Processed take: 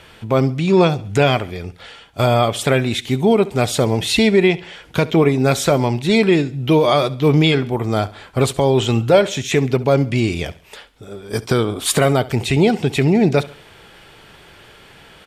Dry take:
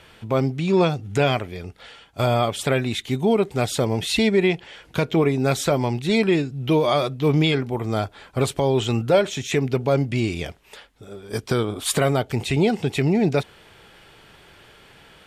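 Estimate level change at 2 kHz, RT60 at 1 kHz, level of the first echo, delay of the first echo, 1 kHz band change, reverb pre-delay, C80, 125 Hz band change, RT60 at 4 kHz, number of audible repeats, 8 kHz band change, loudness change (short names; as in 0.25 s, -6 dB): +5.0 dB, none, -19.5 dB, 69 ms, +5.0 dB, none, none, +5.0 dB, none, 3, +5.0 dB, +5.0 dB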